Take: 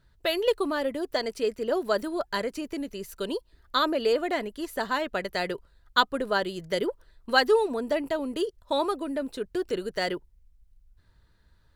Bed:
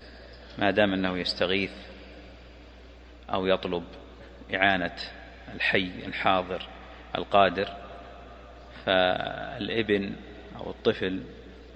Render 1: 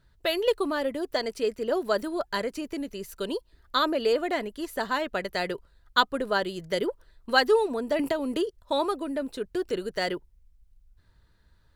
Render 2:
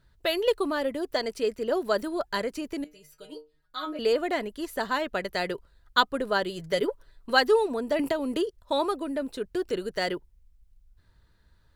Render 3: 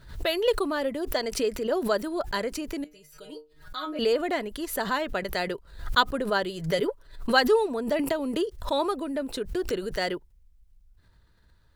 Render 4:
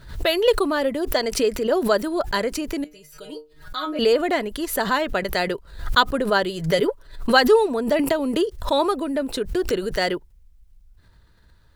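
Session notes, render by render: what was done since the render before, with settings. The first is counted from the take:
7.99–8.47 three-band squash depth 100%
2.84–3.99 metallic resonator 150 Hz, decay 0.26 s, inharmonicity 0.002; 6.49–7.3 comb 7.1 ms, depth 46%
backwards sustainer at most 110 dB/s
gain +6 dB; limiter -3 dBFS, peak gain reduction 2 dB

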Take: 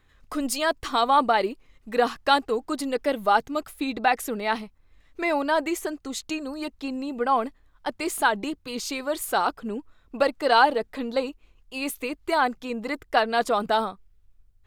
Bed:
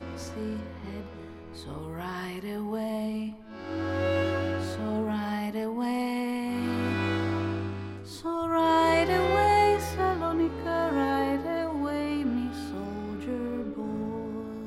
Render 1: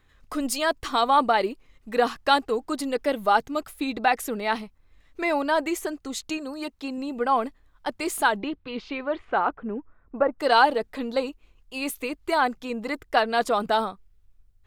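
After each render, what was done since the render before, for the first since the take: 6.37–6.98 low shelf 110 Hz -9.5 dB; 8.38–10.38 LPF 4000 Hz -> 1500 Hz 24 dB/oct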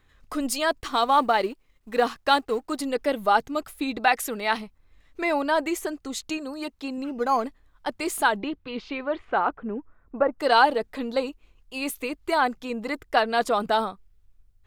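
0.8–2.79 G.711 law mismatch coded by A; 3.99–4.57 tilt shelf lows -3.5 dB, about 740 Hz; 7.04–7.44 decimation joined by straight lines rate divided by 8×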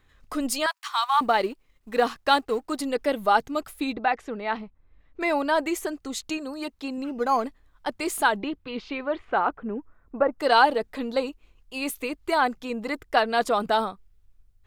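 0.66–1.21 steep high-pass 860 Hz 48 dB/oct; 3.93–5.21 tape spacing loss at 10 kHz 30 dB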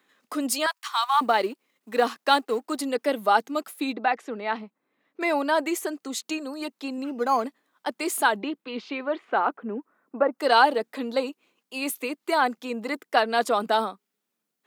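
steep high-pass 200 Hz 36 dB/oct; high shelf 8100 Hz +4 dB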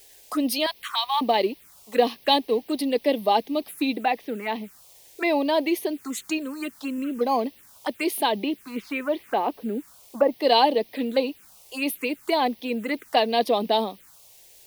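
in parallel at -3 dB: requantised 8-bit, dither triangular; on the sum: envelope phaser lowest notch 190 Hz, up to 1400 Hz, full sweep at -21 dBFS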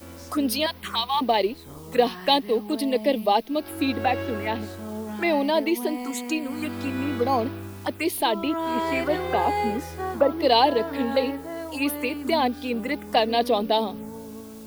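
add bed -4 dB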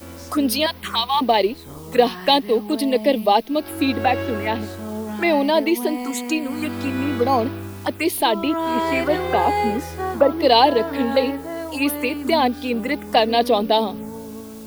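gain +4.5 dB; limiter -2 dBFS, peak gain reduction 1.5 dB

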